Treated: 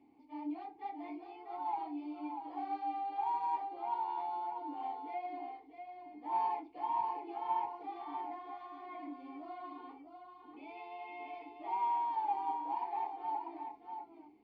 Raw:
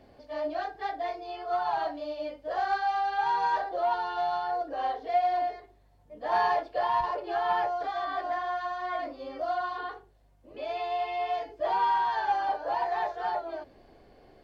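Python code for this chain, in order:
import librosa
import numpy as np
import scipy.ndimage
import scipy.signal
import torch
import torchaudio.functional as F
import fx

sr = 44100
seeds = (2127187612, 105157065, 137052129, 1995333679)

y = fx.vowel_filter(x, sr, vowel='u')
y = y + 10.0 ** (-7.0 / 20.0) * np.pad(y, (int(643 * sr / 1000.0), 0))[:len(y)]
y = y * 10.0 ** (2.5 / 20.0)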